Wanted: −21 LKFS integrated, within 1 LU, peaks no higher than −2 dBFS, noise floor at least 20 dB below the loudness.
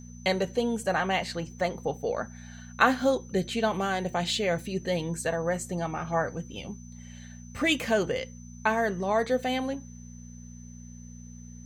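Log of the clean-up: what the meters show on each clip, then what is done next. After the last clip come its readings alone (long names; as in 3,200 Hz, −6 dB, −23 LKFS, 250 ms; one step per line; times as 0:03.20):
mains hum 60 Hz; hum harmonics up to 240 Hz; level of the hum −42 dBFS; interfering tone 6,100 Hz; level of the tone −53 dBFS; integrated loudness −28.5 LKFS; sample peak −7.5 dBFS; target loudness −21.0 LKFS
→ hum removal 60 Hz, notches 4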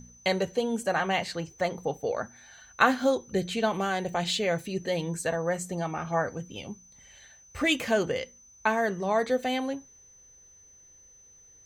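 mains hum none found; interfering tone 6,100 Hz; level of the tone −53 dBFS
→ notch filter 6,100 Hz, Q 30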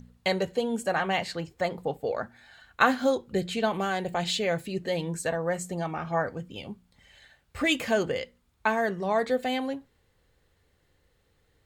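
interfering tone none found; integrated loudness −28.5 LKFS; sample peak −7.0 dBFS; target loudness −21.0 LKFS
→ level +7.5 dB
brickwall limiter −2 dBFS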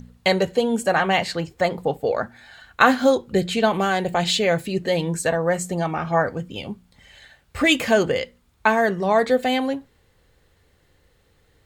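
integrated loudness −21.0 LKFS; sample peak −2.0 dBFS; background noise floor −61 dBFS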